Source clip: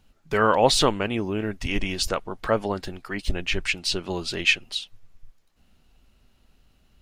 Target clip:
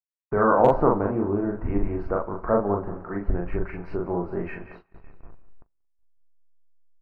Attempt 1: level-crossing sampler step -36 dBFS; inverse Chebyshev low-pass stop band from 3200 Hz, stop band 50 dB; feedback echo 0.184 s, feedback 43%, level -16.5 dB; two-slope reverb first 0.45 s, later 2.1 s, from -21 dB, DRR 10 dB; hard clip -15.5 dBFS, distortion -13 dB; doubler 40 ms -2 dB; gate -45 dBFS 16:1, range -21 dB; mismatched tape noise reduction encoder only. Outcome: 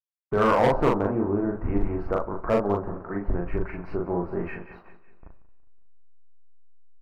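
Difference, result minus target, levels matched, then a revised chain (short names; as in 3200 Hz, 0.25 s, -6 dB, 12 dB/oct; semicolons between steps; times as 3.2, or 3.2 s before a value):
hard clip: distortion +23 dB; level-crossing sampler: distortion +5 dB
level-crossing sampler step -42 dBFS; inverse Chebyshev low-pass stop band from 3200 Hz, stop band 50 dB; feedback echo 0.184 s, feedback 43%, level -16.5 dB; two-slope reverb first 0.45 s, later 2.1 s, from -21 dB, DRR 10 dB; hard clip -6.5 dBFS, distortion -35 dB; doubler 40 ms -2 dB; gate -45 dBFS 16:1, range -21 dB; mismatched tape noise reduction encoder only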